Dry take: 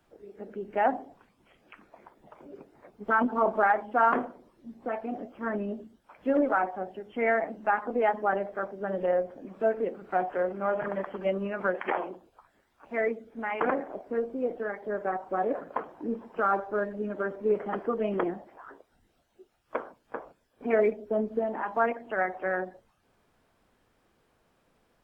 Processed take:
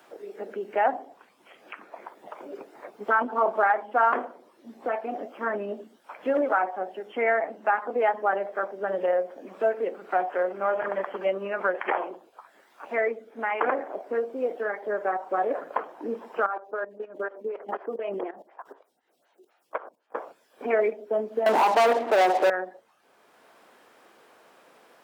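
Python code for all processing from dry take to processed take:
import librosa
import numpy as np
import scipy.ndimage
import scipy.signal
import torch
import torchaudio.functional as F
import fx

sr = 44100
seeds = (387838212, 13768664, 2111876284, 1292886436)

y = fx.chain(x, sr, fx.level_steps(step_db=16),
    fx.stagger_phaser(hz=4.0), at=(16.46, 20.15))
y = fx.chain(y, sr, fx.lowpass(hz=1000.0, slope=24),
    fx.leveller(passes=5), at=(21.46, 22.5))
y = scipy.signal.sosfilt(scipy.signal.butter(2, 410.0, 'highpass', fs=sr, output='sos'), y)
y = fx.band_squash(y, sr, depth_pct=40)
y = F.gain(torch.from_numpy(y), 3.5).numpy()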